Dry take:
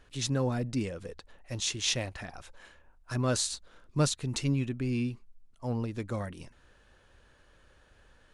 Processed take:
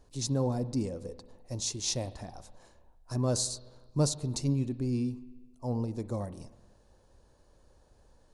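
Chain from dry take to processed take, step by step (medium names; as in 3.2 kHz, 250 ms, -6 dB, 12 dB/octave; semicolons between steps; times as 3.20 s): high-order bell 2.1 kHz -13.5 dB; spring tank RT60 1.3 s, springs 44/48 ms, chirp 25 ms, DRR 15 dB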